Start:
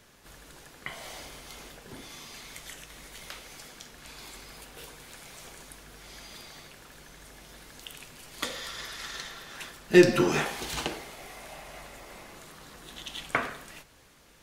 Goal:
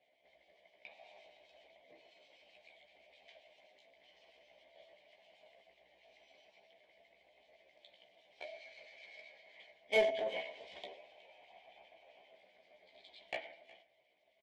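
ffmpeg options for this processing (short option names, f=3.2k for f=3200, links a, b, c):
-filter_complex "[0:a]lowpass=3.5k,bandreject=f=93.9:t=h:w=4,bandreject=f=187.8:t=h:w=4,bandreject=f=281.7:t=h:w=4,bandreject=f=375.6:t=h:w=4,bandreject=f=469.5:t=h:w=4,bandreject=f=563.4:t=h:w=4,flanger=delay=0.3:depth=2.5:regen=-85:speed=1.1:shape=sinusoidal,aeval=exprs='0.178*(cos(1*acos(clip(val(0)/0.178,-1,1)))-cos(1*PI/2))+0.0178*(cos(3*acos(clip(val(0)/0.178,-1,1)))-cos(3*PI/2))+0.0398*(cos(4*acos(clip(val(0)/0.178,-1,1)))-cos(4*PI/2))+0.00794*(cos(5*acos(clip(val(0)/0.178,-1,1)))-cos(5*PI/2))':c=same,asplit=3[a][b][c];[a]bandpass=f=530:t=q:w=8,volume=0dB[d];[b]bandpass=f=1.84k:t=q:w=8,volume=-6dB[e];[c]bandpass=f=2.48k:t=q:w=8,volume=-9dB[f];[d][e][f]amix=inputs=3:normalize=0,asplit=2[g][h];[h]acrusher=bits=4:mix=0:aa=0.5,volume=-10.5dB[i];[g][i]amix=inputs=2:normalize=0,acrossover=split=1700[j][k];[j]aeval=exprs='val(0)*(1-0.5/2+0.5/2*cos(2*PI*7.7*n/s))':c=same[l];[k]aeval=exprs='val(0)*(1-0.5/2-0.5/2*cos(2*PI*7.7*n/s))':c=same[m];[l][m]amix=inputs=2:normalize=0,asetrate=53981,aresample=44100,atempo=0.816958,asplit=2[n][o];[o]adelay=15,volume=-4.5dB[p];[n][p]amix=inputs=2:normalize=0,asplit=2[q][r];[r]aecho=0:1:367:0.0841[s];[q][s]amix=inputs=2:normalize=0,volume=3dB"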